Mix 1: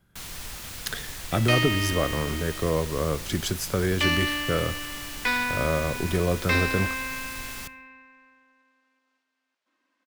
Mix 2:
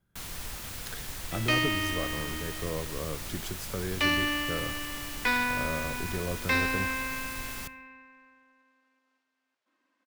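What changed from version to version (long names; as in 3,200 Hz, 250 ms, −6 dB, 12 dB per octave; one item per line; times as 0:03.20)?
speech −9.5 dB
master: add parametric band 4,600 Hz −3 dB 2.9 octaves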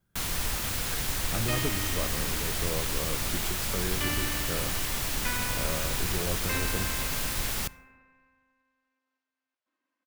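first sound +8.5 dB
second sound −8.5 dB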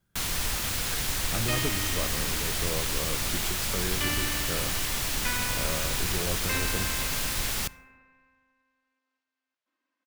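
master: add parametric band 4,600 Hz +3 dB 2.9 octaves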